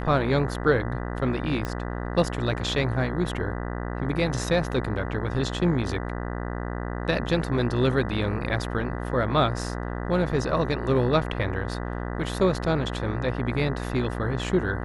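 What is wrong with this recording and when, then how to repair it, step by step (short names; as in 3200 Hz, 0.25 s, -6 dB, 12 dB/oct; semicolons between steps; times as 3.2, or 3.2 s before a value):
buzz 60 Hz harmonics 33 -31 dBFS
1.65 pop -16 dBFS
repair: de-click; de-hum 60 Hz, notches 33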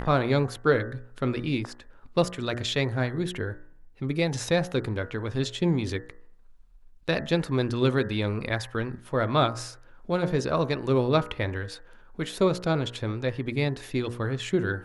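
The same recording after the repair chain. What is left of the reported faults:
none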